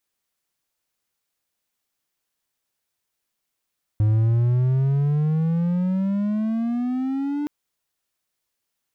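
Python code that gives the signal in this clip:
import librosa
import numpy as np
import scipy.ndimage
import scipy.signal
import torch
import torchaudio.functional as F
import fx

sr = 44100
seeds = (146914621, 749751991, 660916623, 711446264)

y = fx.riser_tone(sr, length_s=3.47, level_db=-13, wave='triangle', hz=105.0, rise_st=18.0, swell_db=-7.5)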